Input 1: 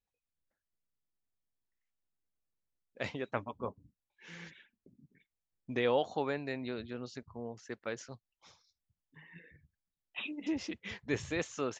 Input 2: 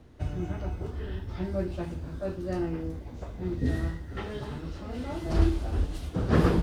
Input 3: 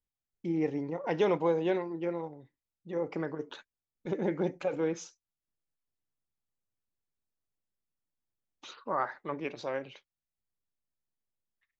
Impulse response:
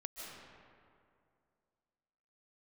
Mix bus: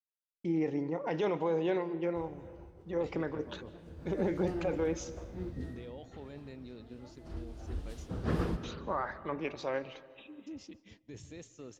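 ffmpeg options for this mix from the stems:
-filter_complex "[0:a]equalizer=f=1400:t=o:w=2.8:g=-14.5,alimiter=level_in=3.16:limit=0.0631:level=0:latency=1:release=22,volume=0.316,volume=0.531,asplit=2[s0][s1];[s1]volume=0.335[s2];[1:a]adelay=1950,volume=1.06,afade=t=in:st=3.77:d=0.4:silence=0.223872,afade=t=out:st=5.43:d=0.3:silence=0.237137,afade=t=in:st=7.46:d=0.37:silence=0.298538,asplit=2[s3][s4];[s4]volume=0.596[s5];[2:a]alimiter=limit=0.0668:level=0:latency=1:release=28,volume=0.891,asplit=2[s6][s7];[s7]volume=0.282[s8];[3:a]atrim=start_sample=2205[s9];[s2][s5][s8]amix=inputs=3:normalize=0[s10];[s10][s9]afir=irnorm=-1:irlink=0[s11];[s0][s3][s6][s11]amix=inputs=4:normalize=0,agate=range=0.0224:threshold=0.00355:ratio=3:detection=peak"

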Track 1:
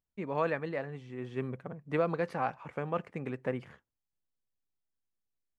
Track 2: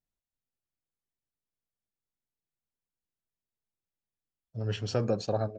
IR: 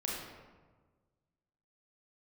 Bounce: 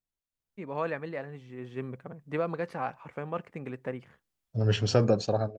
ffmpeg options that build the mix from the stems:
-filter_complex "[0:a]adelay=400,volume=0.501,afade=t=out:st=3.82:d=0.59:silence=0.251189[s0];[1:a]dynaudnorm=f=140:g=9:m=1.78,volume=0.708[s1];[s0][s1]amix=inputs=2:normalize=0,dynaudnorm=f=120:g=9:m=1.78"

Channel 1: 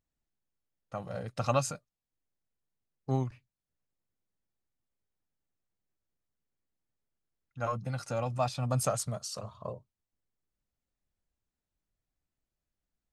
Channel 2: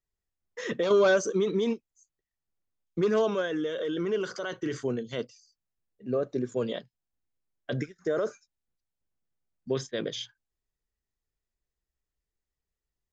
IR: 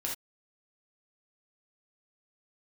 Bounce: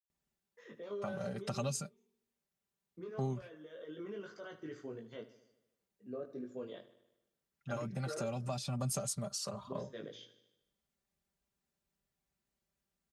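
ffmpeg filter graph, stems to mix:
-filter_complex "[0:a]aecho=1:1:5.1:0.65,acrossover=split=440|3000[s0][s1][s2];[s1]acompressor=threshold=0.01:ratio=6[s3];[s0][s3][s2]amix=inputs=3:normalize=0,adelay=100,volume=1.19[s4];[1:a]lowpass=f=2700:p=1,flanger=delay=18.5:depth=3.1:speed=0.19,volume=0.299,afade=t=in:st=3.58:d=0.49:silence=0.446684,asplit=2[s5][s6];[s6]volume=0.178,aecho=0:1:76|152|228|304|380|456|532|608|684:1|0.59|0.348|0.205|0.121|0.0715|0.0422|0.0249|0.0147[s7];[s4][s5][s7]amix=inputs=3:normalize=0,highpass=66,acompressor=threshold=0.0126:ratio=2"

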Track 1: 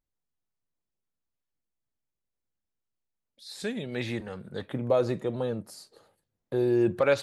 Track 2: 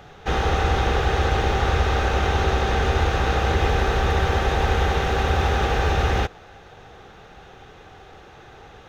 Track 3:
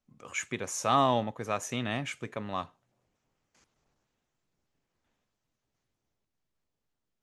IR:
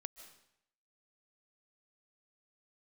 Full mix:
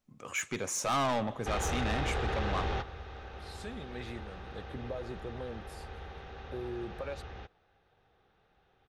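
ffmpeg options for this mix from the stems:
-filter_complex "[0:a]acompressor=threshold=0.0501:ratio=6,volume=0.335[s0];[1:a]lowpass=f=5300:w=0.5412,lowpass=f=5300:w=1.3066,adelay=1200,volume=0.335[s1];[2:a]volume=1.12,asplit=3[s2][s3][s4];[s3]volume=0.398[s5];[s4]apad=whole_len=444676[s6];[s1][s6]sidechaingate=range=0.178:threshold=0.00178:ratio=16:detection=peak[s7];[3:a]atrim=start_sample=2205[s8];[s5][s8]afir=irnorm=-1:irlink=0[s9];[s0][s7][s2][s9]amix=inputs=4:normalize=0,asoftclip=type=tanh:threshold=0.0501"

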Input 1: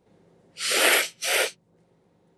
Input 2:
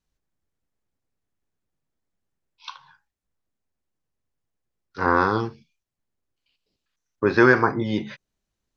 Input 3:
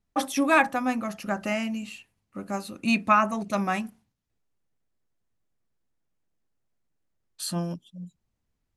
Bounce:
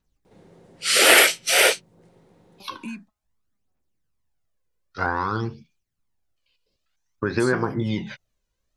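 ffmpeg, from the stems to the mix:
-filter_complex "[0:a]acontrast=78,adelay=250,volume=1[s0];[1:a]acompressor=threshold=0.0794:ratio=6,aphaser=in_gain=1:out_gain=1:delay=2.1:decay=0.55:speed=0.53:type=triangular,volume=1.12,asplit=2[s1][s2];[2:a]acompressor=threshold=0.0251:ratio=6,asplit=2[s3][s4];[s4]afreqshift=-1.8[s5];[s3][s5]amix=inputs=2:normalize=1,volume=1.06[s6];[s2]apad=whole_len=386683[s7];[s6][s7]sidechaingate=range=0.00158:threshold=0.001:ratio=16:detection=peak[s8];[s0][s1][s8]amix=inputs=3:normalize=0"

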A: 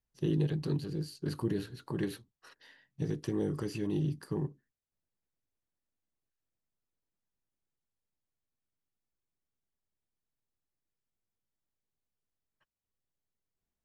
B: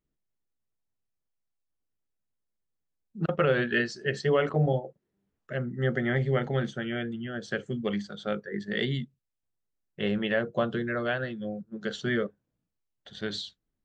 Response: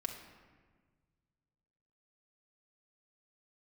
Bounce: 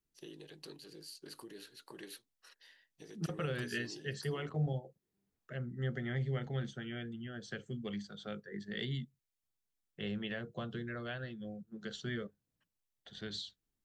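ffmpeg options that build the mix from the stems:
-filter_complex "[0:a]acompressor=threshold=0.0251:ratio=6,highpass=630,equalizer=f=1000:t=o:w=1.8:g=-9.5,volume=1.06[s0];[1:a]acrossover=split=170|3000[s1][s2][s3];[s2]acompressor=threshold=0.00355:ratio=1.5[s4];[s1][s4][s3]amix=inputs=3:normalize=0,bandreject=f=570:w=12,volume=0.531[s5];[s0][s5]amix=inputs=2:normalize=0"

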